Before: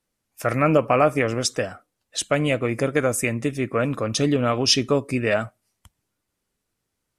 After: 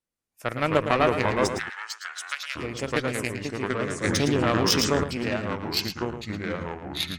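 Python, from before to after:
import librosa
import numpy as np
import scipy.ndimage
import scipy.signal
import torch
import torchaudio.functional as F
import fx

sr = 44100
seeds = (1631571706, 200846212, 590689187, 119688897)

p1 = fx.cheby_harmonics(x, sr, harmonics=(3,), levels_db=(-12,), full_scale_db=-4.5)
p2 = fx.echo_pitch(p1, sr, ms=175, semitones=-3, count=3, db_per_echo=-3.0)
p3 = fx.cheby1_highpass(p2, sr, hz=1400.0, order=3, at=(1.57, 2.55), fade=0.02)
p4 = p3 + fx.echo_single(p3, sr, ms=111, db=-9.0, dry=0)
y = fx.env_flatten(p4, sr, amount_pct=70, at=(4.04, 5.04))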